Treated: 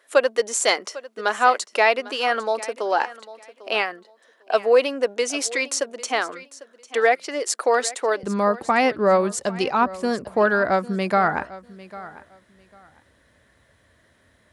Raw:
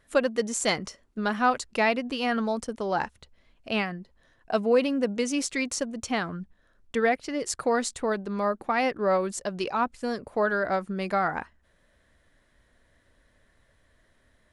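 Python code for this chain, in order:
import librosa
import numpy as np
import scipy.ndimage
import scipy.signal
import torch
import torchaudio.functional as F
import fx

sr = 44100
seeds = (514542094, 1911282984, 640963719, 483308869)

y = fx.highpass(x, sr, hz=fx.steps((0.0, 380.0), (8.23, 62.0)), slope=24)
y = fx.echo_feedback(y, sr, ms=799, feedback_pct=20, wet_db=-18.0)
y = y * 10.0 ** (6.5 / 20.0)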